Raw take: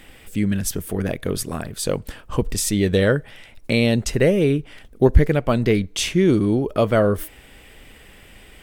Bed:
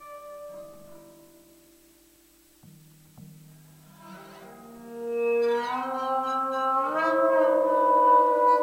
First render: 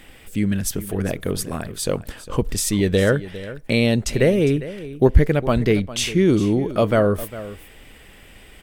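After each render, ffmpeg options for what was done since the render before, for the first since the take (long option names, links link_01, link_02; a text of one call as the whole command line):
ffmpeg -i in.wav -af "aecho=1:1:404:0.168" out.wav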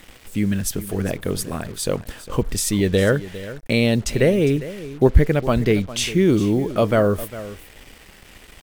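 ffmpeg -i in.wav -af "acrusher=bits=6:mix=0:aa=0.5" out.wav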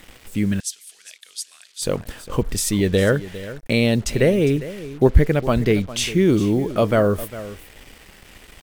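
ffmpeg -i in.wav -filter_complex "[0:a]asettb=1/sr,asplit=3[link_01][link_02][link_03];[link_01]atrim=end=0.604[link_04];[link_02]atrim=start=0.6:end=1.82,asetpts=PTS-STARTPTS,afade=type=in:duration=0.004:curve=qsin,afade=type=out:start_time=1.216:duration=0.004:curve=qsin,asuperpass=centerf=5700:order=4:qfactor=0.92[link_05];[link_03]atrim=start=1.816[link_06];[link_04][link_05]acrossfade=duration=0.004:curve1=hsin:curve2=qsin[link_07];[link_07][link_06]acrossfade=duration=0.004:curve1=qsin:curve2=hsin" out.wav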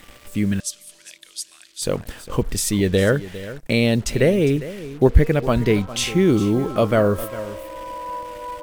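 ffmpeg -i in.wav -i bed.wav -filter_complex "[1:a]volume=-12dB[link_01];[0:a][link_01]amix=inputs=2:normalize=0" out.wav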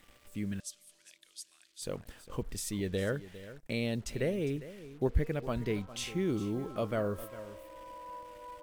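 ffmpeg -i in.wav -af "volume=-15.5dB" out.wav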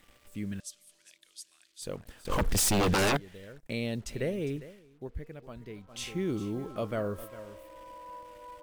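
ffmpeg -i in.wav -filter_complex "[0:a]asettb=1/sr,asplit=3[link_01][link_02][link_03];[link_01]atrim=end=2.254[link_04];[link_02]atrim=start=2.25:end=3.17,asetpts=PTS-STARTPTS,afade=type=in:duration=0.004:curve=qsin,afade=type=out:start_time=0.916:duration=0.004:curve=qsin,aeval=exprs='0.0794*sin(PI/2*4.47*val(0)/0.0794)':channel_layout=same[link_05];[link_03]atrim=start=3.166[link_06];[link_04][link_05]acrossfade=duration=0.004:curve1=hsin:curve2=qsin[link_07];[link_07][link_06]acrossfade=duration=0.004:curve1=qsin:curve2=hsin,asplit=3[link_08][link_09][link_10];[link_08]atrim=end=4.83,asetpts=PTS-STARTPTS,afade=type=out:start_time=4.64:duration=0.19:silence=0.281838[link_11];[link_09]atrim=start=4.83:end=5.83,asetpts=PTS-STARTPTS,volume=-11dB[link_12];[link_10]atrim=start=5.83,asetpts=PTS-STARTPTS,afade=type=in:duration=0.19:silence=0.281838[link_13];[link_11][link_12][link_13]concat=n=3:v=0:a=1" out.wav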